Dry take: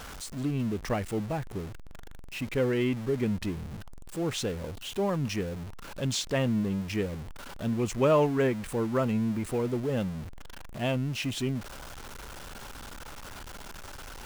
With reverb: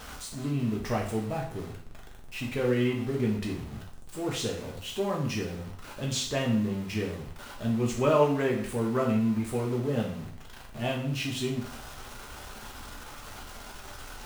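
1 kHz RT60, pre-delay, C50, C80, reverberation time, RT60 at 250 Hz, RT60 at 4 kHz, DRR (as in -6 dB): 0.55 s, 4 ms, 7.0 dB, 10.5 dB, 0.55 s, 0.50 s, 0.55 s, -2.0 dB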